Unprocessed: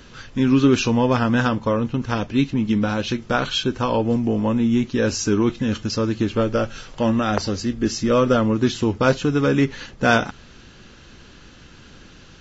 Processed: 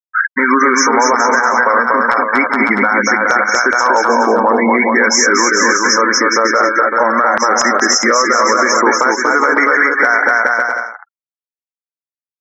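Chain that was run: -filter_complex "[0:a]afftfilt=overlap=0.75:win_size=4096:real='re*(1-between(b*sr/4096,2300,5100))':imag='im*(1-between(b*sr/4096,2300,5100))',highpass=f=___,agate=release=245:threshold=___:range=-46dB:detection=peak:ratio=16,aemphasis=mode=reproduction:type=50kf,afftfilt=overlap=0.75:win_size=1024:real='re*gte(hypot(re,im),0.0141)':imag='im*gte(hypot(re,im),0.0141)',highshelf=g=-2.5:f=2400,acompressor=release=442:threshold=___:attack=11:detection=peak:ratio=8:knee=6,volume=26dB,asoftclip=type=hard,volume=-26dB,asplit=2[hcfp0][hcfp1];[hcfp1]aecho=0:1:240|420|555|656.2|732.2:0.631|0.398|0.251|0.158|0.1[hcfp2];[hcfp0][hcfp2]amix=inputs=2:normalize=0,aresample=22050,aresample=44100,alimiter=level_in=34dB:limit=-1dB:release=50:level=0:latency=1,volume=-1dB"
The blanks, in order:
1300, -52dB, -36dB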